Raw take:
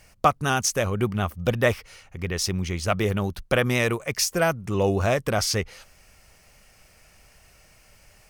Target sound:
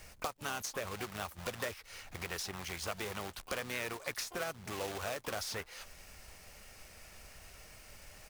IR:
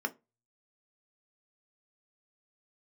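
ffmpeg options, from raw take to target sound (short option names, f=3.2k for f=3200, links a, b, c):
-filter_complex "[0:a]equalizer=f=140:t=o:w=0.36:g=-7,acompressor=threshold=-36dB:ratio=2.5,acrusher=bits=2:mode=log:mix=0:aa=0.000001,asplit=3[a][b][c];[b]asetrate=33038,aresample=44100,atempo=1.33484,volume=-10dB[d];[c]asetrate=88200,aresample=44100,atempo=0.5,volume=-17dB[e];[a][d][e]amix=inputs=3:normalize=0,acrossover=split=510|2900|7900[f][g][h][i];[f]acompressor=threshold=-48dB:ratio=4[j];[g]acompressor=threshold=-37dB:ratio=4[k];[h]acompressor=threshold=-44dB:ratio=4[l];[i]acompressor=threshold=-47dB:ratio=4[m];[j][k][l][m]amix=inputs=4:normalize=0"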